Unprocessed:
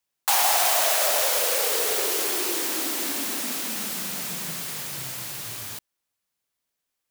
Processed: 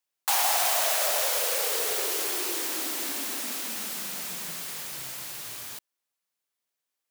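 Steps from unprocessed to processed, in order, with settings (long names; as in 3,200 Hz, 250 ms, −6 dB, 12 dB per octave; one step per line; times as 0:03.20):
high-pass filter 280 Hz 6 dB per octave
level −3.5 dB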